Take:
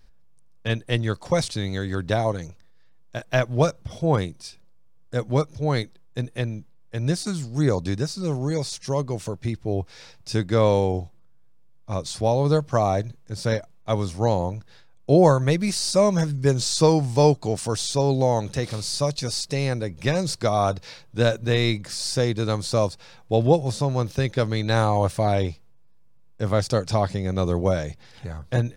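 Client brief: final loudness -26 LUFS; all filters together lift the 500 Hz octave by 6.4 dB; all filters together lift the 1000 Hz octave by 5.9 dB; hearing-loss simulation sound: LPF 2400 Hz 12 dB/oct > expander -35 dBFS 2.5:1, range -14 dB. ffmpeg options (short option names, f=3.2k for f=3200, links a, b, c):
-af "lowpass=2.4k,equalizer=f=500:t=o:g=6,equalizer=f=1k:t=o:g=5.5,agate=range=-14dB:threshold=-35dB:ratio=2.5,volume=-6.5dB"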